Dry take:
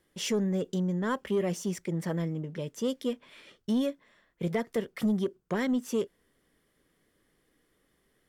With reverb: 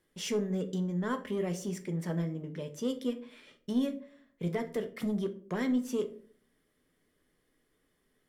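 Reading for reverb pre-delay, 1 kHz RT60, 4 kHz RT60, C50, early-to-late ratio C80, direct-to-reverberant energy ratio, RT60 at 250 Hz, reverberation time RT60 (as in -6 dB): 5 ms, 0.40 s, 0.30 s, 14.5 dB, 19.0 dB, 6.5 dB, 0.65 s, 0.50 s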